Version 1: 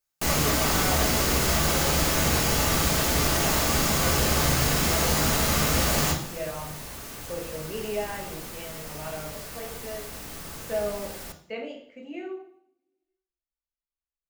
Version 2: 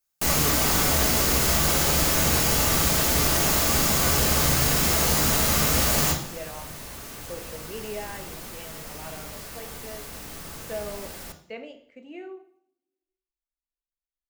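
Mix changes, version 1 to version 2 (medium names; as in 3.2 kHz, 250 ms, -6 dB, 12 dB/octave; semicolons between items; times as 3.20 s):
speech: send -8.0 dB; first sound: add treble shelf 6.7 kHz +5.5 dB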